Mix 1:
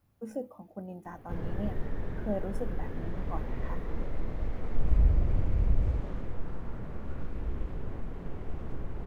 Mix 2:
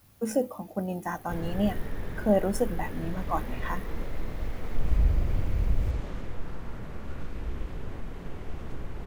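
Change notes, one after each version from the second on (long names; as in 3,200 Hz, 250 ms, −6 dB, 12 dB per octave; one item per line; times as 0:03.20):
speech +9.5 dB
master: add high-shelf EQ 2,000 Hz +11.5 dB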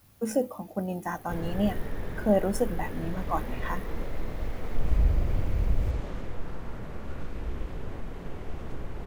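background: add parametric band 580 Hz +2.5 dB 1.6 octaves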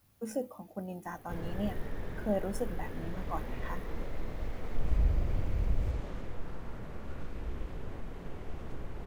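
speech −8.5 dB
background −4.5 dB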